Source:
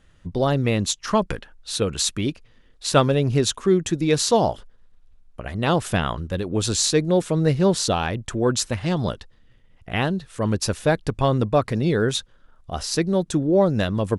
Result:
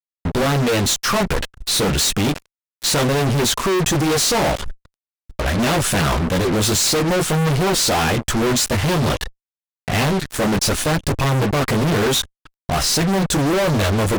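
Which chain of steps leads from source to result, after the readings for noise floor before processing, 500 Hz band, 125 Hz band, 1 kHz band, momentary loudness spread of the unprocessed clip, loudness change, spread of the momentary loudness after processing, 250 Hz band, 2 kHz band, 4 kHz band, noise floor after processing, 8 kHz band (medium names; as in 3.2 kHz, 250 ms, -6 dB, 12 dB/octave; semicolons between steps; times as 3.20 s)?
-54 dBFS, +1.5 dB, +3.5 dB, +4.5 dB, 10 LU, +4.0 dB, 7 LU, +3.0 dB, +8.0 dB, +7.0 dB, under -85 dBFS, +7.0 dB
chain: chorus voices 6, 0.35 Hz, delay 17 ms, depth 4.3 ms; fuzz box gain 45 dB, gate -42 dBFS; trim -3 dB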